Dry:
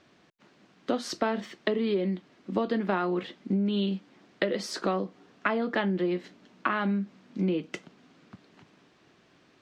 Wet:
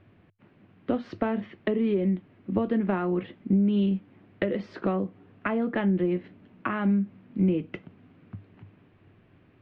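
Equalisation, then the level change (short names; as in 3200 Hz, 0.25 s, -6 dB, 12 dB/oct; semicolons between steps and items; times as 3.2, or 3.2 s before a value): synth low-pass 2600 Hz, resonance Q 1.9; tilt -3.5 dB/oct; bell 99 Hz +14.5 dB 0.33 oct; -4.0 dB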